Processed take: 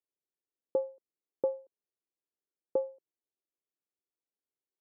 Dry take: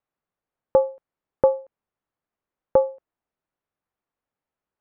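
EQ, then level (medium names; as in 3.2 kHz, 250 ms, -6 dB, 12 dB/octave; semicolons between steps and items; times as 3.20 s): band-pass filter 370 Hz, Q 2.4; -6.5 dB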